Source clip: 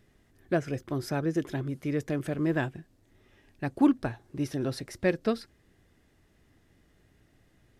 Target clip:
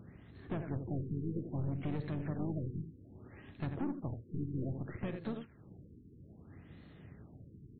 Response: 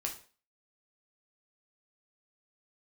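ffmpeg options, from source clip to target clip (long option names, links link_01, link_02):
-filter_complex "[0:a]highpass=110,asplit=2[link_01][link_02];[link_02]aecho=0:1:46|81:0.133|0.224[link_03];[link_01][link_03]amix=inputs=2:normalize=0,acompressor=threshold=-41dB:ratio=8,bass=frequency=250:gain=10,treble=frequency=4000:gain=3,bandreject=frequency=6700:width=14,acrusher=bits=6:mode=log:mix=0:aa=0.000001,aeval=exprs='(tanh(89.1*val(0)+0.3)-tanh(0.3))/89.1':channel_layout=same,aexciter=amount=15.4:drive=3:freq=6600,asplit=4[link_04][link_05][link_06][link_07];[link_05]asetrate=29433,aresample=44100,atempo=1.49831,volume=-9dB[link_08];[link_06]asetrate=37084,aresample=44100,atempo=1.18921,volume=-15dB[link_09];[link_07]asetrate=55563,aresample=44100,atempo=0.793701,volume=-12dB[link_10];[link_04][link_08][link_09][link_10]amix=inputs=4:normalize=0,afftfilt=real='re*lt(b*sr/1024,440*pow(4400/440,0.5+0.5*sin(2*PI*0.62*pts/sr)))':imag='im*lt(b*sr/1024,440*pow(4400/440,0.5+0.5*sin(2*PI*0.62*pts/sr)))':win_size=1024:overlap=0.75,volume=5.5dB"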